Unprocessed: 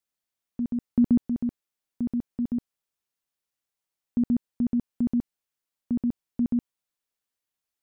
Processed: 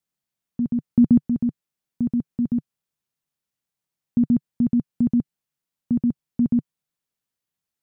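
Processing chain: bell 150 Hz +11.5 dB 1.2 oct

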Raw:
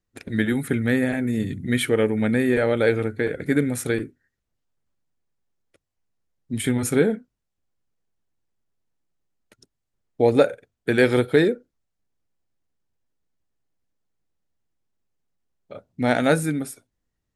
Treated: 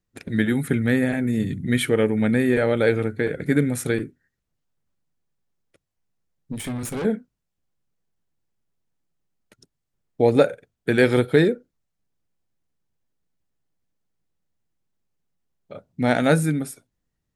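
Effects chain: 6.52–7.05 tube stage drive 26 dB, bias 0.8; bell 160 Hz +5 dB 0.63 oct

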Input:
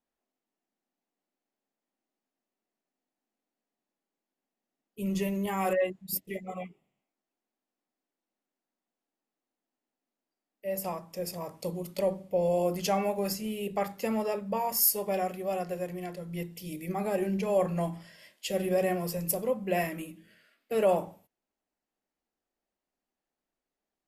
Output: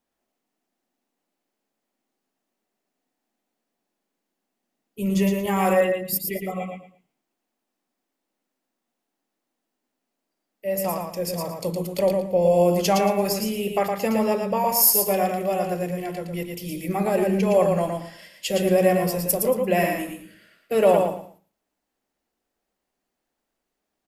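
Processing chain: feedback echo 0.114 s, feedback 24%, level -4.5 dB; gain +7 dB

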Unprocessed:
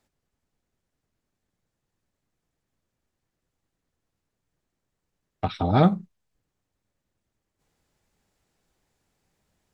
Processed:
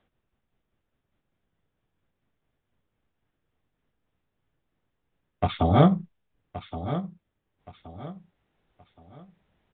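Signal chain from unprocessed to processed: gliding pitch shift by -2 st ending unshifted; on a send: feedback echo 1.122 s, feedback 32%, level -12 dB; on the sum: downsampling 8000 Hz; gain +3.5 dB

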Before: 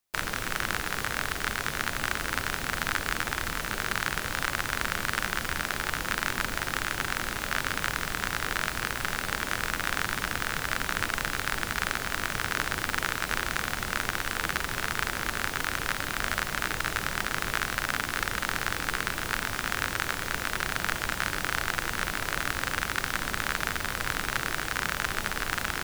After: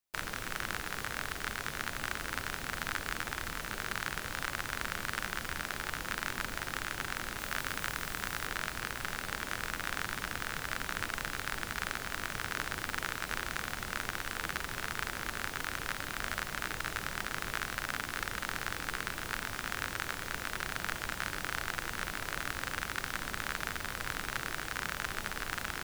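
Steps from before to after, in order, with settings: 7.38–8.47 high shelf 8900 Hz +4.5 dB; gain -7 dB

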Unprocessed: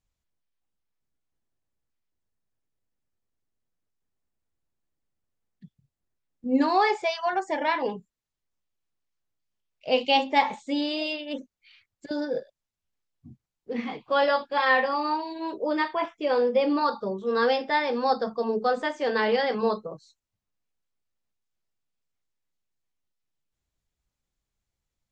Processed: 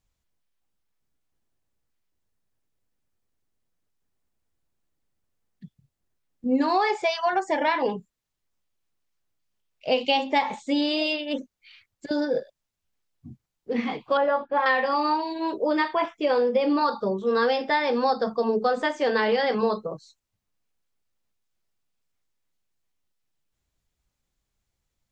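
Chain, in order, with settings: 14.17–14.66 LPF 1400 Hz 12 dB/oct; compressor 6:1, threshold -23 dBFS, peak gain reduction 8 dB; gain +4.5 dB

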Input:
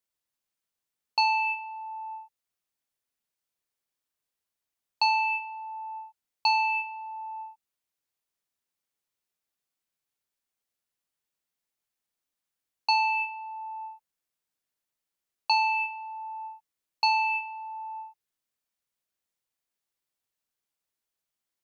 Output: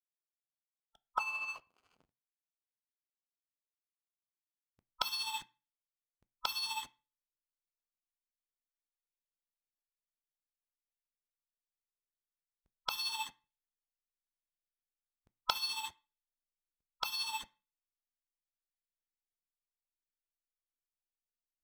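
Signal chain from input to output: pre-echo 0.226 s -19.5 dB; gate -31 dBFS, range -17 dB; dynamic EQ 1200 Hz, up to -5 dB, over -45 dBFS, Q 3; in parallel at 0 dB: compressor 12:1, threshold -36 dBFS, peak gain reduction 15.5 dB; on the sum: formant shift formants +4 st; low-pass sweep 1200 Hz -> 4100 Hz, 1.78–3.73; backlash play -34.5 dBFS; tremolo 14 Hz, depth 49%; spectral gate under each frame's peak -10 dB weak; on a send at -13.5 dB: reverb RT60 0.35 s, pre-delay 3 ms; on the sum: gain +3 dB

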